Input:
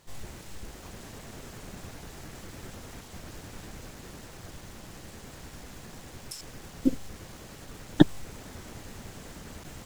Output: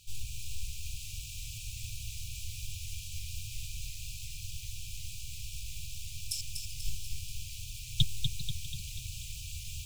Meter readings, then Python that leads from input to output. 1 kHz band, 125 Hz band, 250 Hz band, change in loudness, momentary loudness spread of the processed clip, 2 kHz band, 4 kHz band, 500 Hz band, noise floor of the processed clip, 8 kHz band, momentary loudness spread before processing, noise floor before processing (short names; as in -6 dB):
under -40 dB, -0.5 dB, under -20 dB, -3.5 dB, 6 LU, -4.0 dB, +6.5 dB, under -40 dB, -43 dBFS, +6.5 dB, 15 LU, -47 dBFS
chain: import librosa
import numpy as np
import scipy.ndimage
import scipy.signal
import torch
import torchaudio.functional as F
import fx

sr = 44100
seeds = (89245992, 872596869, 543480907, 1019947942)

y = fx.brickwall_bandstop(x, sr, low_hz=150.0, high_hz=2300.0)
y = fx.peak_eq(y, sr, hz=190.0, db=-10.0, octaves=0.96)
y = fx.echo_feedback(y, sr, ms=243, feedback_pct=55, wet_db=-6)
y = fx.echo_warbled(y, sr, ms=395, feedback_pct=36, rate_hz=2.8, cents=199, wet_db=-16.5)
y = y * librosa.db_to_amplitude(5.0)